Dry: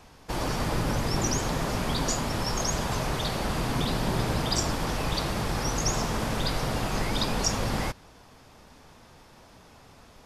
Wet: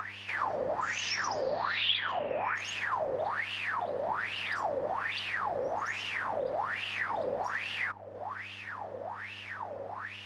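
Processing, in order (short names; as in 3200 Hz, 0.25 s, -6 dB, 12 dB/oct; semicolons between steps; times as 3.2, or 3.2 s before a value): bell 1800 Hz +7 dB 0.26 oct; sine folder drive 7 dB, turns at -12 dBFS; 0.8–2.54 synth low-pass 7300 Hz -> 2300 Hz, resonance Q 12; 3.42–4.08 low shelf 340 Hz -9.5 dB; upward compressor, threshold -23 dBFS; wah 1.2 Hz 520–2900 Hz, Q 10; compressor 2:1, threshold -44 dBFS, peak gain reduction 12.5 dB; band-limited delay 0.82 s, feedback 56%, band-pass 510 Hz, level -20.5 dB; buzz 100 Hz, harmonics 32, -64 dBFS -7 dB/oct; gain +8.5 dB; Opus 32 kbps 48000 Hz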